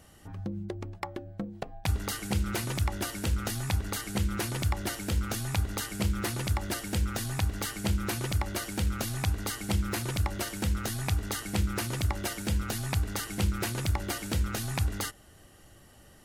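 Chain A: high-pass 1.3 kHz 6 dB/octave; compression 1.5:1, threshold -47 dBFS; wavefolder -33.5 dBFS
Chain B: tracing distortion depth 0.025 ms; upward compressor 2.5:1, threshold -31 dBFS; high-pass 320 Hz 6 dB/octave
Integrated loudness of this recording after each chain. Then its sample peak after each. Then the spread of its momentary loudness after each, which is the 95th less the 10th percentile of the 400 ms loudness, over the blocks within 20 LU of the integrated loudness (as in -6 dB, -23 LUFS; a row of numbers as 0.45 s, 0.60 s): -43.0 LUFS, -35.5 LUFS; -33.5 dBFS, -15.5 dBFS; 11 LU, 8 LU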